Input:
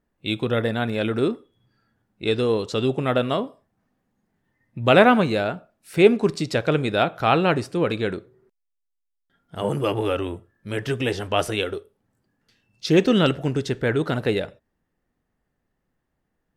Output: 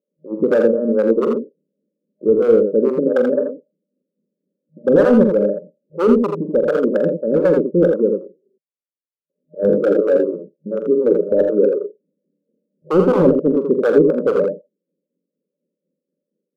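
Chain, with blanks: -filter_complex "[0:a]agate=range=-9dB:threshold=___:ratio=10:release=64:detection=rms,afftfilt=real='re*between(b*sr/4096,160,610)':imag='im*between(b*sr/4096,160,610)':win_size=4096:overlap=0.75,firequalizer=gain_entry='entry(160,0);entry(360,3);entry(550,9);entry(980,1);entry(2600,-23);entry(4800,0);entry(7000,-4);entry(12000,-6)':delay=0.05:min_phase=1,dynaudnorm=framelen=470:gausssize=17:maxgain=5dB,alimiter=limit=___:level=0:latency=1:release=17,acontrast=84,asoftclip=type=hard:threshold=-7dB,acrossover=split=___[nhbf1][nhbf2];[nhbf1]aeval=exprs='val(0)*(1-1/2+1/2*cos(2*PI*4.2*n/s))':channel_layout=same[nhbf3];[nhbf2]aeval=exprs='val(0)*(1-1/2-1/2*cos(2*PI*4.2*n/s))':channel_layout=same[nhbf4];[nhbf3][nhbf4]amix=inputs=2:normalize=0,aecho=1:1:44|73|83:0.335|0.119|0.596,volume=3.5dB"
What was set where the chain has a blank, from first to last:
-43dB, -9dB, 550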